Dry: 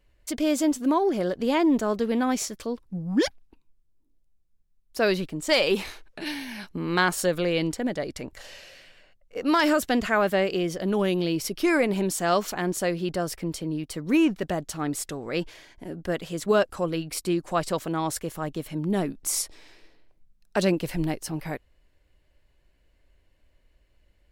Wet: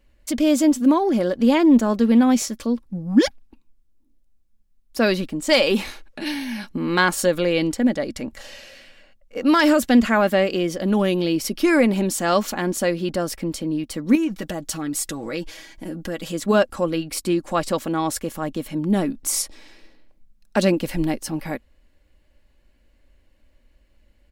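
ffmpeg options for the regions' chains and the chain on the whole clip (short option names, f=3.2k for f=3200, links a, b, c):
-filter_complex "[0:a]asettb=1/sr,asplit=3[a][b][c];[a]atrim=end=14.154[d];[b]atrim=start=14.15:end=16.32,asetpts=PTS-STARTPTS,afade=t=in:d=0.004:c=qsin,afade=t=out:st=2.166:d=0.004:c=qsin,aecho=1:1:6.2:0.54,atrim=end_sample=95697,acompressor=threshold=-31dB:ratio=2.5:attack=3.2:release=140:knee=1:detection=peak,highshelf=f=3.7k:g=6.5[e];[c]atrim=start=16.316[f];[d][e]acrossfade=d=0.004:c1=hsin:c2=qsin[g];[g][f]acrossfade=d=0.004:c1=qsin:c2=hsin,equalizer=f=230:t=o:w=0.3:g=7.5,aecho=1:1:3.6:0.32,volume=3.5dB"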